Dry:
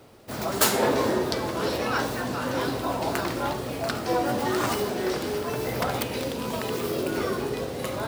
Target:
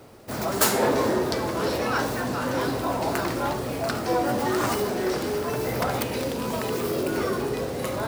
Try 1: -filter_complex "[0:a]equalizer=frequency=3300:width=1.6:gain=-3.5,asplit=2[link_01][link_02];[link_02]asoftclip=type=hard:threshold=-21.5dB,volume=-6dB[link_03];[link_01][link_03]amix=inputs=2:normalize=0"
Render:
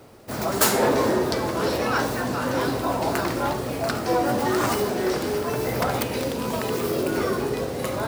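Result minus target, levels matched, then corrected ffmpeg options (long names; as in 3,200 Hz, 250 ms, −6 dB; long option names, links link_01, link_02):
hard clipping: distortion −9 dB
-filter_complex "[0:a]equalizer=frequency=3300:width=1.6:gain=-3.5,asplit=2[link_01][link_02];[link_02]asoftclip=type=hard:threshold=-33dB,volume=-6dB[link_03];[link_01][link_03]amix=inputs=2:normalize=0"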